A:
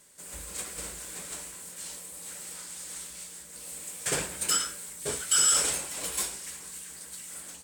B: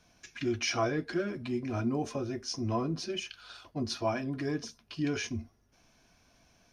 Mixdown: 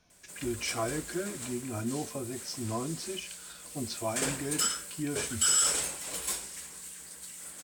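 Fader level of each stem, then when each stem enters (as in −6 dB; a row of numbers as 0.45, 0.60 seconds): −2.5, −3.0 decibels; 0.10, 0.00 seconds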